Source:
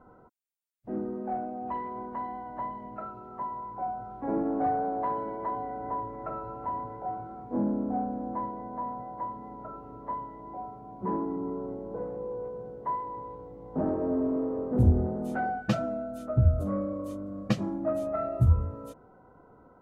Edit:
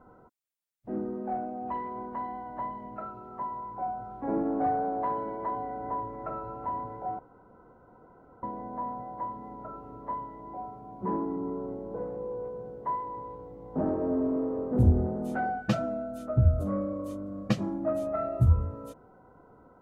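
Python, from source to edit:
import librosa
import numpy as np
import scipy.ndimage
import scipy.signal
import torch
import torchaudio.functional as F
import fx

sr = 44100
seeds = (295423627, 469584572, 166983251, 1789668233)

y = fx.edit(x, sr, fx.room_tone_fill(start_s=7.19, length_s=1.24), tone=tone)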